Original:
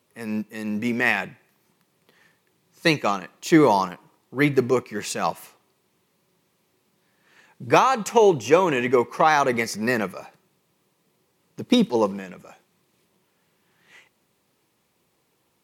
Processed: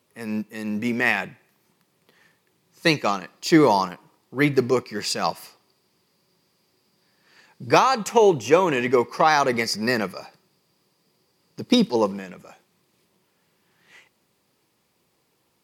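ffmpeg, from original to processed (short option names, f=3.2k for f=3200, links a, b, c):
-af "asetnsamples=n=441:p=0,asendcmd='2.89 equalizer g 12.5;3.72 equalizer g 6.5;4.57 equalizer g 14;7.98 equalizer g 2;8.74 equalizer g 13.5;11.96 equalizer g 5.5',equalizer=f=4.8k:t=o:w=0.21:g=3"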